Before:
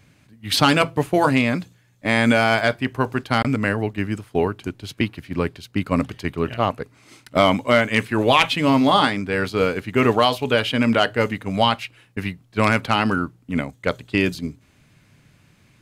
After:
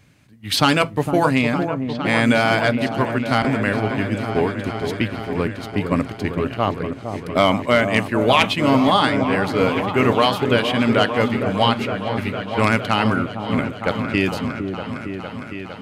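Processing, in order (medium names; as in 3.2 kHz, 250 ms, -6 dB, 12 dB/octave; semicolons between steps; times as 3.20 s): delay with an opening low-pass 458 ms, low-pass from 750 Hz, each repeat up 1 oct, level -6 dB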